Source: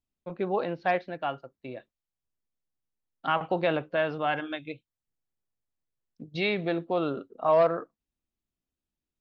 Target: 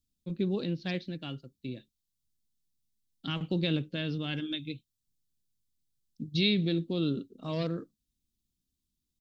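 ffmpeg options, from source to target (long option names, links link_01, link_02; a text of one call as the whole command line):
ffmpeg -i in.wav -af "firequalizer=gain_entry='entry(220,0);entry(700,-28);entry(3600,1)':delay=0.05:min_phase=1,volume=6.5dB" out.wav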